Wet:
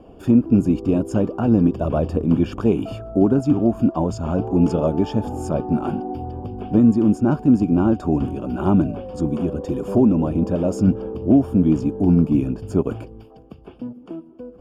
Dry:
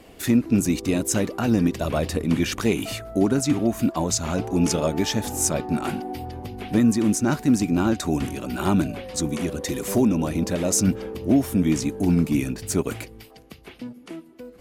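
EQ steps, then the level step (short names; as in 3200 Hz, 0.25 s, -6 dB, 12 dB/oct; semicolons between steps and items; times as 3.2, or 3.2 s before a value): running mean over 22 samples; +4.5 dB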